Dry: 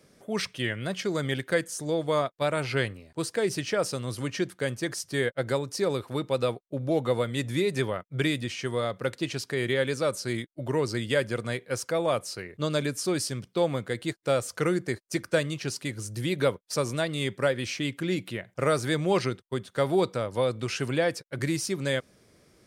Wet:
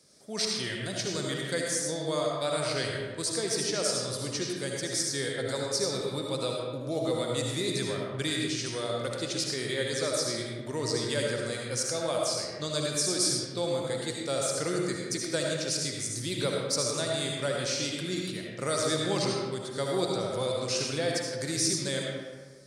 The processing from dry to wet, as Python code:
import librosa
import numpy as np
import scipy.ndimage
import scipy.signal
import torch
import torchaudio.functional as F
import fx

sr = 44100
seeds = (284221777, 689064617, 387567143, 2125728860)

y = scipy.signal.sosfilt(scipy.signal.butter(2, 53.0, 'highpass', fs=sr, output='sos'), x)
y = fx.band_shelf(y, sr, hz=6200.0, db=12.5, octaves=1.7)
y = fx.rev_freeverb(y, sr, rt60_s=1.5, hf_ratio=0.55, predelay_ms=35, drr_db=-1.5)
y = y * 10.0 ** (-7.5 / 20.0)